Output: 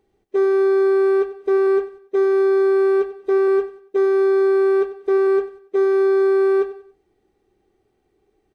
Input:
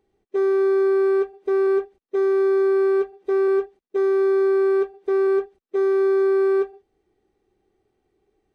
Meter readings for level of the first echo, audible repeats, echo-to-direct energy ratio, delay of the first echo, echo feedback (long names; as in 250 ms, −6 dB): −15.5 dB, 3, −15.0 dB, 94 ms, 34%